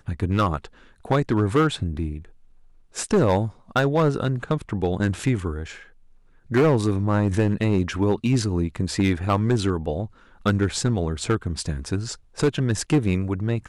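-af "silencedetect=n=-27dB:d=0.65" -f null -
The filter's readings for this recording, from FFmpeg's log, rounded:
silence_start: 2.17
silence_end: 2.97 | silence_duration: 0.80
silence_start: 5.64
silence_end: 6.51 | silence_duration: 0.88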